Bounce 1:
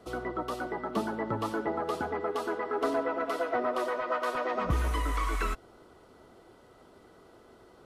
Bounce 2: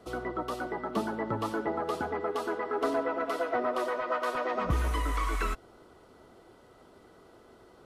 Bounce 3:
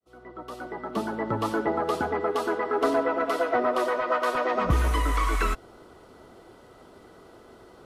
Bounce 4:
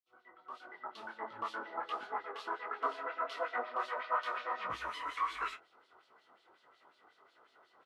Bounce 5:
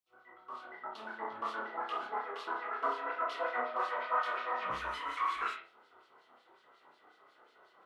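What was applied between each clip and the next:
nothing audible
opening faded in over 1.55 s; gain +5.5 dB
LFO band-pass sine 5.5 Hz 980–4000 Hz; doubler 27 ms -14 dB; detuned doubles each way 51 cents
reverb, pre-delay 32 ms, DRR 1.5 dB

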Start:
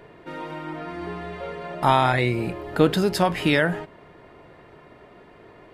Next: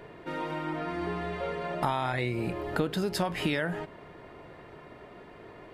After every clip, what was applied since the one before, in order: compressor 6:1, threshold -26 dBFS, peak gain reduction 13.5 dB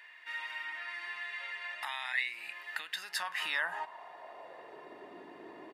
comb 1.1 ms, depth 44%; high-pass sweep 2000 Hz -> 320 Hz, 2.88–5.14; gain -3.5 dB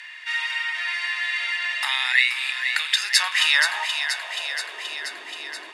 weighting filter ITU-R 468; on a send: thin delay 0.478 s, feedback 69%, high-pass 1400 Hz, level -7 dB; on the sum: gain +8.5 dB

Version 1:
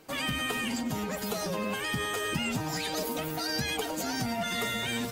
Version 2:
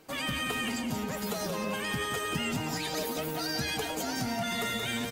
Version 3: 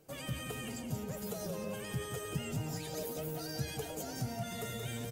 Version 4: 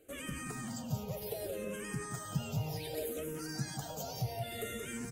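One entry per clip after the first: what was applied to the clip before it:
echo 0.178 s -7 dB; gain -1.5 dB
graphic EQ 125/250/500/1000/2000/4000 Hz +8/-7/+3/-8/-7/-7 dB; gain -4.5 dB
endless phaser -0.65 Hz; gain +3 dB

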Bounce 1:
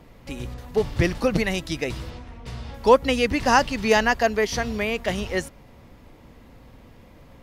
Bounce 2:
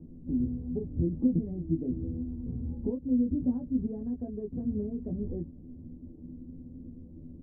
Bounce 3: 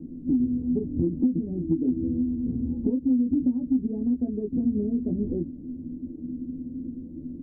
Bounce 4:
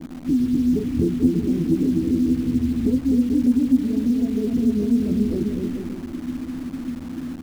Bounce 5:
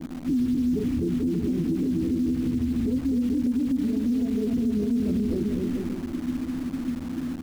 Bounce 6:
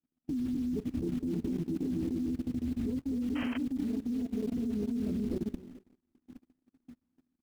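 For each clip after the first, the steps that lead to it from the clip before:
compressor 5:1, threshold -28 dBFS, peak gain reduction 17 dB; ladder low-pass 320 Hz, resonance 50%; on a send: early reflections 12 ms -3.5 dB, 24 ms -4 dB; on the sum: gain +7.5 dB
bell 280 Hz +14 dB 0.99 oct; compressor 6:1, threshold -20 dBFS, peak gain reduction 12 dB
bouncing-ball echo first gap 0.25 s, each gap 0.75×, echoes 5; in parallel at -7 dB: requantised 6-bit, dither none
limiter -18.5 dBFS, peak gain reduction 11 dB
gate -24 dBFS, range -46 dB; painted sound noise, 3.35–3.58, 280–3200 Hz -36 dBFS; level quantiser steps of 16 dB

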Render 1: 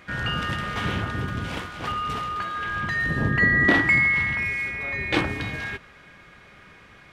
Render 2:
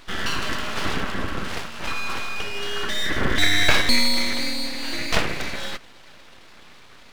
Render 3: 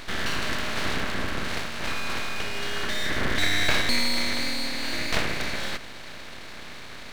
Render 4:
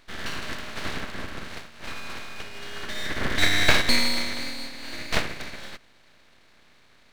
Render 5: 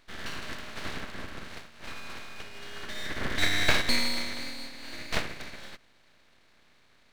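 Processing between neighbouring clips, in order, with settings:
full-wave rectifier; gain +4 dB
per-bin compression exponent 0.6; gain -7 dB
upward expander 2.5:1, over -33 dBFS; gain +6 dB
ending taper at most 490 dB/s; gain -5 dB

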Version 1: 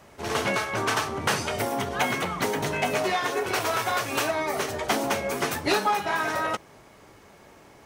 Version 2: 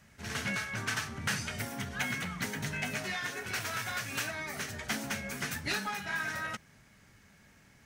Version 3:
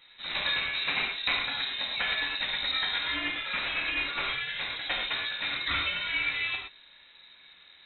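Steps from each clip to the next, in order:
EQ curve 220 Hz 0 dB, 340 Hz -14 dB, 1100 Hz -12 dB, 1600 Hz 0 dB, 3300 Hz -4 dB, 6400 Hz -1 dB, 10000 Hz -3 dB; gain -4 dB
non-linear reverb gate 0.14 s flat, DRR -0.5 dB; inverted band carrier 3900 Hz; gain +2 dB

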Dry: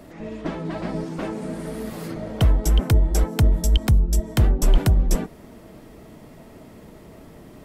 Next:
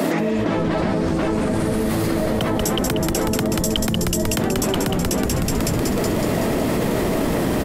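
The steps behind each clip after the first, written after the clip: HPF 170 Hz 24 dB/oct; on a send: frequency-shifting echo 0.186 s, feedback 60%, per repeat -110 Hz, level -6 dB; on the sum: fast leveller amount 100%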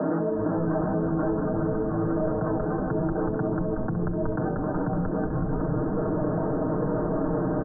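steep low-pass 1600 Hz 96 dB/oct; comb 6.5 ms; gain -7 dB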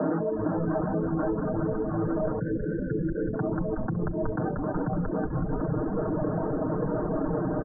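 reverb removal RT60 0.69 s; spectral delete 2.4–3.34, 600–1400 Hz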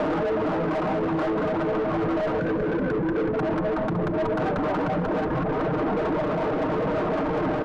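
overdrive pedal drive 29 dB, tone 1300 Hz, clips at -15 dBFS; thinning echo 0.188 s, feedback 63%, level -11 dB; limiter -19.5 dBFS, peak gain reduction 5 dB

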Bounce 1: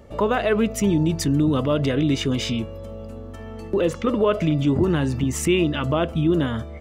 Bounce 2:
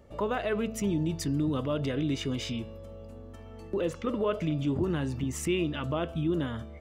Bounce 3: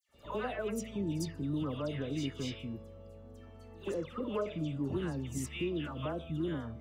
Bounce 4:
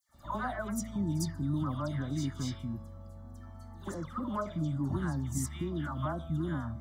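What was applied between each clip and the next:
de-hum 221.2 Hz, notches 25; gain -9 dB
dispersion lows, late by 0.143 s, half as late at 1800 Hz; reverse echo 53 ms -19.5 dB; gain -6.5 dB
fixed phaser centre 1100 Hz, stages 4; gain +6.5 dB

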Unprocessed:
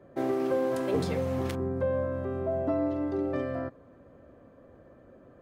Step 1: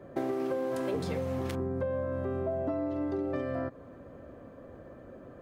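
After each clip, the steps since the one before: compressor 6:1, threshold -35 dBFS, peak gain reduction 11.5 dB; gain +5.5 dB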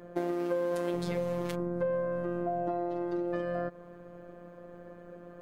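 robotiser 174 Hz; gain +2.5 dB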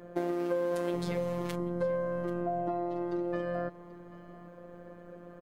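echo 0.785 s -17.5 dB

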